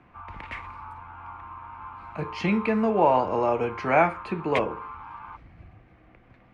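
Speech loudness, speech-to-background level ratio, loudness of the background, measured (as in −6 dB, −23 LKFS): −24.5 LKFS, 16.0 dB, −40.5 LKFS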